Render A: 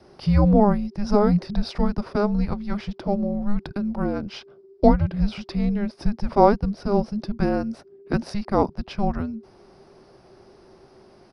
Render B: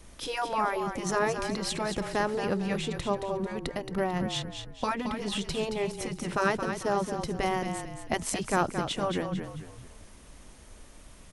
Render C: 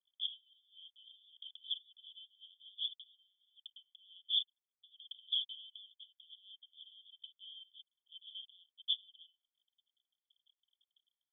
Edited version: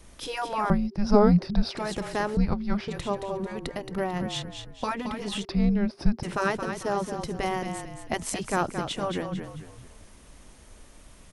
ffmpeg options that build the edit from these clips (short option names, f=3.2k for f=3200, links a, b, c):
-filter_complex "[0:a]asplit=3[a][b][c];[1:a]asplit=4[d][e][f][g];[d]atrim=end=0.702[h];[a]atrim=start=0.698:end=1.772[i];[e]atrim=start=1.768:end=2.372[j];[b]atrim=start=2.368:end=2.882[k];[f]atrim=start=2.878:end=5.452[l];[c]atrim=start=5.448:end=6.232[m];[g]atrim=start=6.228[n];[h][i]acrossfade=d=0.004:c1=hsin:c2=hsin[o];[o][j]acrossfade=d=0.004:c1=hsin:c2=hsin[p];[p][k]acrossfade=d=0.004:c1=hsin:c2=hsin[q];[q][l]acrossfade=d=0.004:c1=hsin:c2=hsin[r];[r][m]acrossfade=d=0.004:c1=hsin:c2=hsin[s];[s][n]acrossfade=d=0.004:c1=hsin:c2=hsin"